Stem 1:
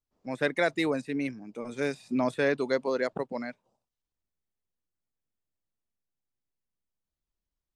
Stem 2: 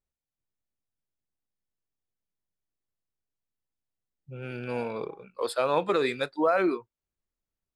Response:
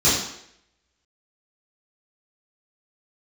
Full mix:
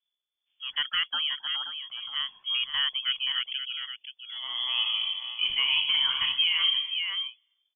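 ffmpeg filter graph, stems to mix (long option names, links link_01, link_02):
-filter_complex "[0:a]lowshelf=frequency=170:gain=-10.5,adelay=350,volume=-2.5dB,asplit=2[link_01][link_02];[link_02]volume=-9dB[link_03];[1:a]volume=-0.5dB,asplit=3[link_04][link_05][link_06];[link_05]volume=-22dB[link_07];[link_06]volume=-9dB[link_08];[2:a]atrim=start_sample=2205[link_09];[link_07][link_09]afir=irnorm=-1:irlink=0[link_10];[link_03][link_08]amix=inputs=2:normalize=0,aecho=0:1:527:1[link_11];[link_01][link_04][link_10][link_11]amix=inputs=4:normalize=0,lowshelf=frequency=460:gain=4.5,lowpass=frequency=3000:width_type=q:width=0.5098,lowpass=frequency=3000:width_type=q:width=0.6013,lowpass=frequency=3000:width_type=q:width=0.9,lowpass=frequency=3000:width_type=q:width=2.563,afreqshift=-3500,alimiter=limit=-16dB:level=0:latency=1:release=193"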